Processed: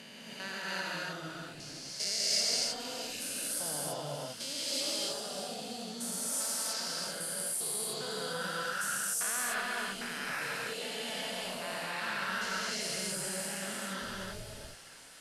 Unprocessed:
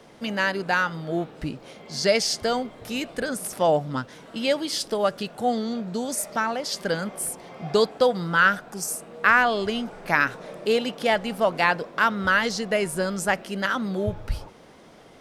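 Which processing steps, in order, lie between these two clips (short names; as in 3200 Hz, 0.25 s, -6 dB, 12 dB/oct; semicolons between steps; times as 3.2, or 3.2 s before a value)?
stepped spectrum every 0.4 s; LPF 11000 Hz 12 dB/oct; in parallel at +2.5 dB: limiter -20.5 dBFS, peak gain reduction 9.5 dB; on the sum: pre-emphasis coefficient 0.9; on a send: thin delay 0.645 s, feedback 77%, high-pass 1600 Hz, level -17 dB; on the sum: non-linear reverb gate 0.35 s rising, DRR -4 dB; gain -6 dB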